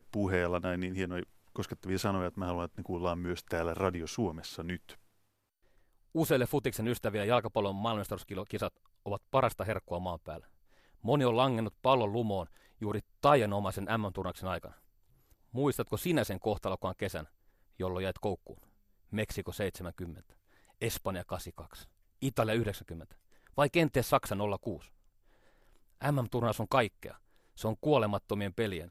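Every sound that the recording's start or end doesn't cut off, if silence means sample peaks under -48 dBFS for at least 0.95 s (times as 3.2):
6.15–24.85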